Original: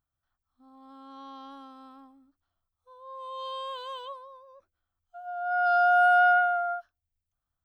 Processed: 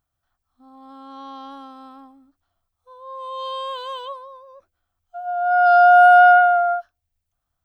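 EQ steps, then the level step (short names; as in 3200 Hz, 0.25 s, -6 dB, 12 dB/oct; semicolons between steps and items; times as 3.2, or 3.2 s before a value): bell 700 Hz +4.5 dB 0.41 oct; +7.0 dB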